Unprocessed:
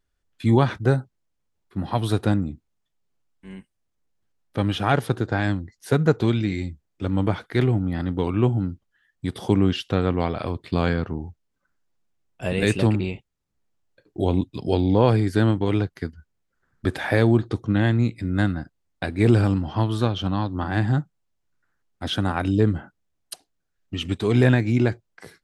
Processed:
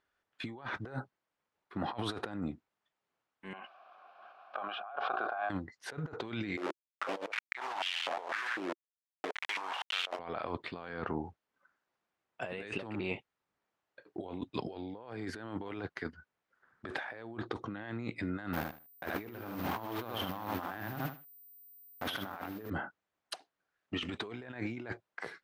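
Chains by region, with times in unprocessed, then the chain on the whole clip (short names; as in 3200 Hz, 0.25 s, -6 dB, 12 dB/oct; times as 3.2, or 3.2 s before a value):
3.53–5.5 vowel filter a + speaker cabinet 230–5000 Hz, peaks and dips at 290 Hz -8 dB, 470 Hz -8 dB, 1500 Hz +8 dB, 2500 Hz -5 dB + backwards sustainer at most 20 dB/s
6.57–10.19 level-crossing sampler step -26 dBFS + stepped high-pass 4 Hz 350–3000 Hz
18.53–22.7 level-crossing sampler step -31.5 dBFS + feedback echo 76 ms, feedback 19%, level -6 dB + careless resampling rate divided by 3×, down filtered, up zero stuff
whole clip: LPF 1200 Hz 12 dB/oct; differentiator; negative-ratio compressor -57 dBFS, ratio -1; gain +17 dB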